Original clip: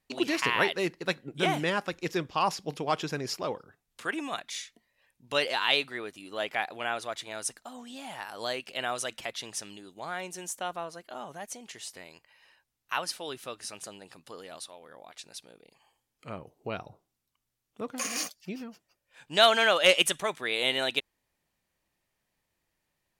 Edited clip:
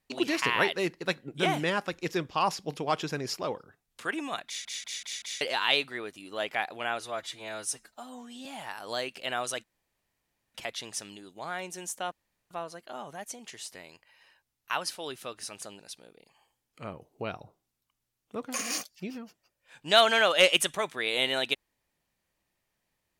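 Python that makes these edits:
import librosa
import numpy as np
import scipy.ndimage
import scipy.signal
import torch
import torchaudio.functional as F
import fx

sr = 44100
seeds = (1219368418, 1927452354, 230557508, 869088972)

y = fx.edit(x, sr, fx.stutter_over(start_s=4.46, slice_s=0.19, count=5),
    fx.stretch_span(start_s=7.0, length_s=0.97, factor=1.5),
    fx.insert_room_tone(at_s=9.15, length_s=0.91),
    fx.insert_room_tone(at_s=10.72, length_s=0.39),
    fx.cut(start_s=14.01, length_s=1.24), tone=tone)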